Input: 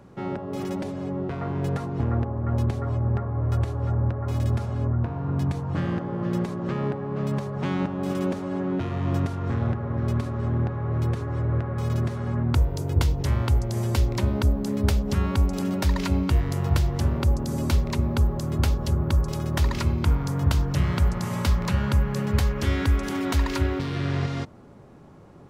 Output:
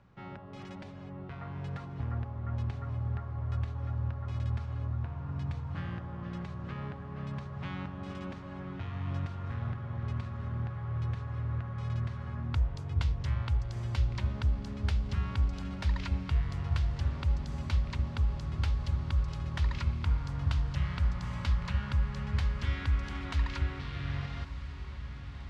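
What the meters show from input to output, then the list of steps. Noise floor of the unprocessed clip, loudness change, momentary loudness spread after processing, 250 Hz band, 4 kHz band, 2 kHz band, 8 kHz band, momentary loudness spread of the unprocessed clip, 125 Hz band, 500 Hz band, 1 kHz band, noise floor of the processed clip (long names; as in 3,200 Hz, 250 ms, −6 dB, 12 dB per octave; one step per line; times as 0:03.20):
−34 dBFS, −9.0 dB, 9 LU, −14.5 dB, −9.0 dB, −7.5 dB, below −15 dB, 5 LU, −8.5 dB, −17.5 dB, −10.5 dB, −44 dBFS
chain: low-pass filter 3,700 Hz 12 dB per octave
parametric band 370 Hz −14 dB 2.3 octaves
feedback delay with all-pass diffusion 1,197 ms, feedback 74%, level −13 dB
level −5.5 dB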